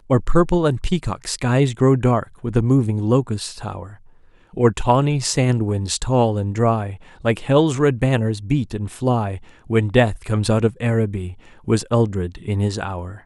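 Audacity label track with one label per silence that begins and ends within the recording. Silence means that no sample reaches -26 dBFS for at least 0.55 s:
3.830000	4.570000	silence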